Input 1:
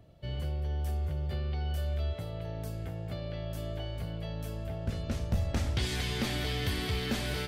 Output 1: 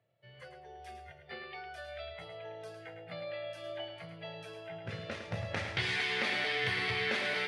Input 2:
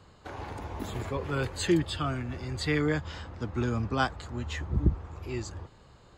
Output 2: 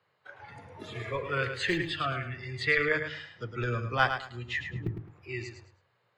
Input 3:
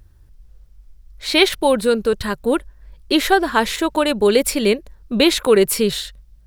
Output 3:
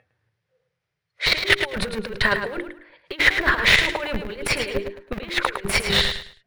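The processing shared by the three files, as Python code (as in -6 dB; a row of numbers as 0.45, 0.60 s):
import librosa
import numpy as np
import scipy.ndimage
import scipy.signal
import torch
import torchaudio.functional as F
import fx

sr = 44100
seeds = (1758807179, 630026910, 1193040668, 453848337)

p1 = fx.noise_reduce_blind(x, sr, reduce_db=16)
p2 = scipy.signal.sosfilt(scipy.signal.cheby1(4, 1.0, [110.0, 9700.0], 'bandpass', fs=sr, output='sos'), p1)
p3 = fx.hum_notches(p2, sr, base_hz=50, count=8)
p4 = fx.schmitt(p3, sr, flips_db=-20.0)
p5 = p3 + (p4 * librosa.db_to_amplitude(-9.5))
p6 = fx.over_compress(p5, sr, threshold_db=-23.0, ratio=-0.5)
p7 = fx.graphic_eq_10(p6, sr, hz=(250, 500, 2000, 8000), db=(-12, 4, 10, -12))
y = p7 + fx.echo_feedback(p7, sr, ms=107, feedback_pct=25, wet_db=-8.0, dry=0)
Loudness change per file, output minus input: -1.5, +0.5, -3.5 LU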